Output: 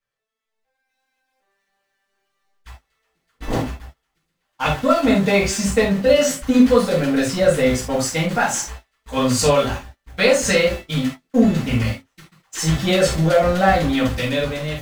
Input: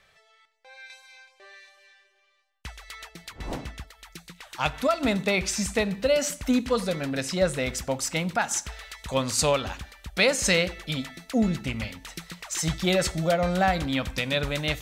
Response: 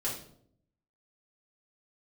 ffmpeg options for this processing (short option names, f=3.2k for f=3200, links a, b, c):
-filter_complex "[0:a]aeval=exprs='val(0)+0.5*0.0224*sgn(val(0))':c=same,highshelf=f=3.1k:g=-4,agate=range=-42dB:threshold=-31dB:ratio=16:detection=peak,dynaudnorm=f=230:g=7:m=11.5dB[a];[1:a]atrim=start_sample=2205,atrim=end_sample=3969[b];[a][b]afir=irnorm=-1:irlink=0,volume=-6.5dB"